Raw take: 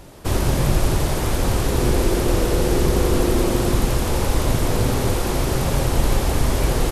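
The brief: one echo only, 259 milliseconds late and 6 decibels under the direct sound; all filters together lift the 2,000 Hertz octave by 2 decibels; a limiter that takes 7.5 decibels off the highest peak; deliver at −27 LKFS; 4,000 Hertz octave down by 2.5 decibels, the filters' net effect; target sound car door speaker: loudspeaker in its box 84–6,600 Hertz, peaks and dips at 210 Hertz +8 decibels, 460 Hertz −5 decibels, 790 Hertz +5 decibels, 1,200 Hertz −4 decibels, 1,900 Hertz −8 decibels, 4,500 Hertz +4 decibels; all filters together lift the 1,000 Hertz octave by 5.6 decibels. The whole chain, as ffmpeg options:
ffmpeg -i in.wav -af "equalizer=frequency=1000:width_type=o:gain=4,equalizer=frequency=2000:width_type=o:gain=8,equalizer=frequency=4000:width_type=o:gain=-7.5,alimiter=limit=-12.5dB:level=0:latency=1,highpass=84,equalizer=frequency=210:width_type=q:width=4:gain=8,equalizer=frequency=460:width_type=q:width=4:gain=-5,equalizer=frequency=790:width_type=q:width=4:gain=5,equalizer=frequency=1200:width_type=q:width=4:gain=-4,equalizer=frequency=1900:width_type=q:width=4:gain=-8,equalizer=frequency=4500:width_type=q:width=4:gain=4,lowpass=frequency=6600:width=0.5412,lowpass=frequency=6600:width=1.3066,aecho=1:1:259:0.501,volume=-4dB" out.wav

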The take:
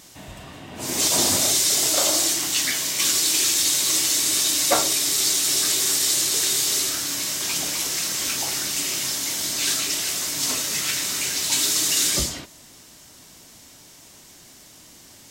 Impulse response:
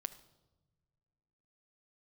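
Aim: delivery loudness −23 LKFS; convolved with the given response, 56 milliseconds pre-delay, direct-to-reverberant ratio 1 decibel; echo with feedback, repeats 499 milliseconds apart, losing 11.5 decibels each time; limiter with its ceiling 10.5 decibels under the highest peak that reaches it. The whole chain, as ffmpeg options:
-filter_complex "[0:a]alimiter=limit=-16dB:level=0:latency=1,aecho=1:1:499|998|1497:0.266|0.0718|0.0194,asplit=2[link_01][link_02];[1:a]atrim=start_sample=2205,adelay=56[link_03];[link_02][link_03]afir=irnorm=-1:irlink=0,volume=1dB[link_04];[link_01][link_04]amix=inputs=2:normalize=0,volume=-2.5dB"

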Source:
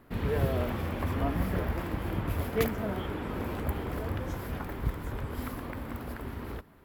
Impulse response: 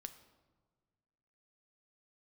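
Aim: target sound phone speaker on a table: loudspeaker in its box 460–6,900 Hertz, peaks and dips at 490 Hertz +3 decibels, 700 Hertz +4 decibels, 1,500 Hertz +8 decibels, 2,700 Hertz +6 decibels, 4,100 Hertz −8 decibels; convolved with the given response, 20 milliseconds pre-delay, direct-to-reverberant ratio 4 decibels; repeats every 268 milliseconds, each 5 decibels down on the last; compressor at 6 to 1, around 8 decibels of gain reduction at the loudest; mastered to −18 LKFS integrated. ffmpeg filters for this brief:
-filter_complex "[0:a]acompressor=threshold=-31dB:ratio=6,aecho=1:1:268|536|804|1072|1340|1608|1876:0.562|0.315|0.176|0.0988|0.0553|0.031|0.0173,asplit=2[link_01][link_02];[1:a]atrim=start_sample=2205,adelay=20[link_03];[link_02][link_03]afir=irnorm=-1:irlink=0,volume=1dB[link_04];[link_01][link_04]amix=inputs=2:normalize=0,highpass=frequency=460:width=0.5412,highpass=frequency=460:width=1.3066,equalizer=frequency=490:width_type=q:width=4:gain=3,equalizer=frequency=700:width_type=q:width=4:gain=4,equalizer=frequency=1500:width_type=q:width=4:gain=8,equalizer=frequency=2700:width_type=q:width=4:gain=6,equalizer=frequency=4100:width_type=q:width=4:gain=-8,lowpass=frequency=6900:width=0.5412,lowpass=frequency=6900:width=1.3066,volume=18.5dB"

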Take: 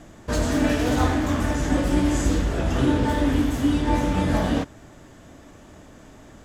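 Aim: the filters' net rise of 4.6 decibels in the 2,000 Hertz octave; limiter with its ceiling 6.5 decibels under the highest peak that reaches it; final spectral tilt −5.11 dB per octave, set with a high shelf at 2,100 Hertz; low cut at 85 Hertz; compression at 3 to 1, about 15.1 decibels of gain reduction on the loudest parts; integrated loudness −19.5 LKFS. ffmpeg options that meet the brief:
ffmpeg -i in.wav -af "highpass=85,equalizer=frequency=2000:width_type=o:gain=7.5,highshelf=frequency=2100:gain=-3,acompressor=threshold=-38dB:ratio=3,volume=20.5dB,alimiter=limit=-9.5dB:level=0:latency=1" out.wav

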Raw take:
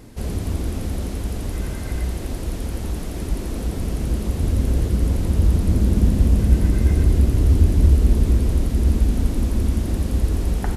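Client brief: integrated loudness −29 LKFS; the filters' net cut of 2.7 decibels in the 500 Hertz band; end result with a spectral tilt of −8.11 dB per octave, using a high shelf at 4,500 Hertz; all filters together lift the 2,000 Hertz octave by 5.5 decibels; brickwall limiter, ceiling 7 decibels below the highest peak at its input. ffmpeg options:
ffmpeg -i in.wav -af "equalizer=frequency=500:width_type=o:gain=-4,equalizer=frequency=2000:width_type=o:gain=8.5,highshelf=frequency=4500:gain=-8,volume=-6dB,alimiter=limit=-16.5dB:level=0:latency=1" out.wav

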